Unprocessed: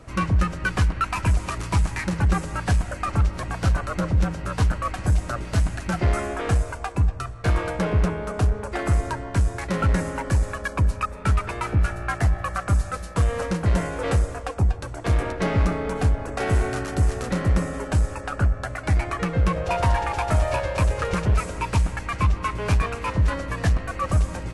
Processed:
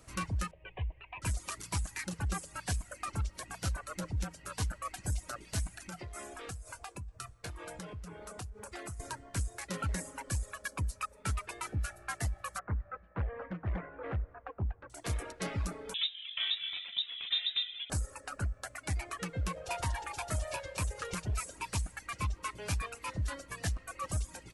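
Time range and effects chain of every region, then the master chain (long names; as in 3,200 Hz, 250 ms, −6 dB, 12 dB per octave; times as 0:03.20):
0:00.51–0:01.22: variable-slope delta modulation 64 kbit/s + Butterworth low-pass 2,900 Hz 48 dB per octave + phaser with its sweep stopped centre 570 Hz, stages 4
0:05.77–0:09.00: downward compressor, threshold −26 dBFS + double-tracking delay 23 ms −12.5 dB
0:12.59–0:14.90: low-pass filter 1,900 Hz 24 dB per octave + highs frequency-modulated by the lows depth 0.49 ms
0:15.94–0:17.90: high-pass filter 140 Hz 24 dB per octave + voice inversion scrambler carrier 3,800 Hz
whole clip: first-order pre-emphasis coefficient 0.8; reverb reduction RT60 1.3 s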